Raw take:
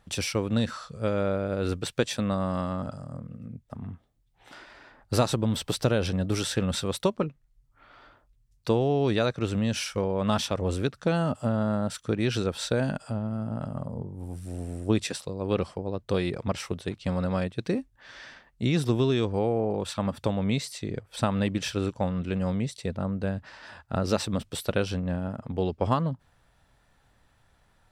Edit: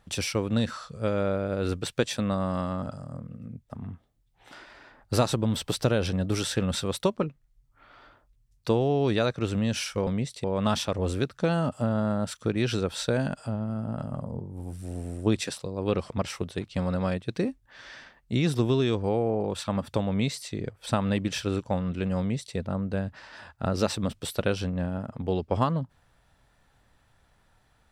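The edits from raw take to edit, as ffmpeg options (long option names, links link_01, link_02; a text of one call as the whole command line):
ffmpeg -i in.wav -filter_complex "[0:a]asplit=4[link_01][link_02][link_03][link_04];[link_01]atrim=end=10.072[link_05];[link_02]atrim=start=22.488:end=22.862[link_06];[link_03]atrim=start=10.068:end=15.732[link_07];[link_04]atrim=start=16.398[link_08];[link_05][link_06]acrossfade=duration=0.004:curve1=hsin:curve2=hsin[link_09];[link_09][link_07]acrossfade=duration=0.004:curve1=hsin:curve2=hsin[link_10];[link_10][link_08]acrossfade=duration=0.004:curve1=hsin:curve2=hsin" out.wav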